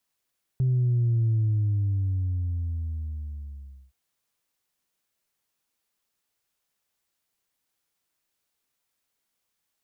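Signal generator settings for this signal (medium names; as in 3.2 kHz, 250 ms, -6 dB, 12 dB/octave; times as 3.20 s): sub drop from 130 Hz, over 3.32 s, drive 0 dB, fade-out 2.63 s, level -20 dB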